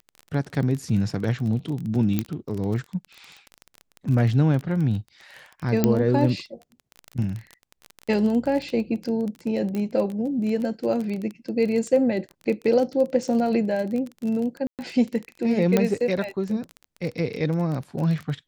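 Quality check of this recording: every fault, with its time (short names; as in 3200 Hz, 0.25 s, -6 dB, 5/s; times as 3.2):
crackle 22/s -28 dBFS
2.19 pop -10 dBFS
5.84 pop -6 dBFS
9.75 pop -18 dBFS
14.67–14.79 gap 0.118 s
15.77 pop -7 dBFS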